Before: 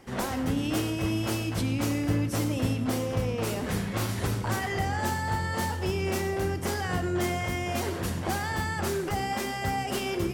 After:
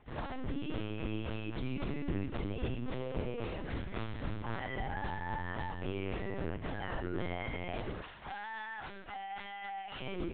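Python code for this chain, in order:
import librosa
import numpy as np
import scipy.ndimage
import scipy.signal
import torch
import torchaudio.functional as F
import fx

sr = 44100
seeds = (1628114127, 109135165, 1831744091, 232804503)

y = fx.highpass(x, sr, hz=760.0, slope=12, at=(8.01, 10.01))
y = fx.lpc_vocoder(y, sr, seeds[0], excitation='pitch_kept', order=10)
y = y * librosa.db_to_amplitude(-8.5)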